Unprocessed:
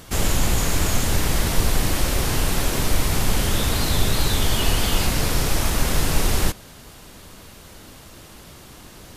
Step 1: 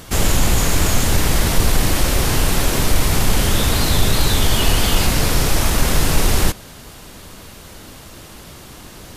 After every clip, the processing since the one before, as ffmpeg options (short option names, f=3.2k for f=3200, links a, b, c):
-af "acontrast=24"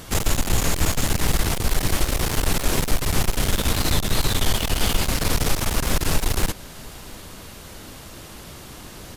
-af "alimiter=limit=-6.5dB:level=0:latency=1:release=287,aeval=exprs='clip(val(0),-1,0.0708)':c=same,aecho=1:1:693:0.0668,volume=-1.5dB"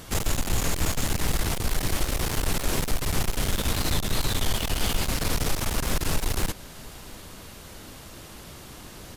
-af "asoftclip=type=tanh:threshold=-9.5dB,volume=-3.5dB"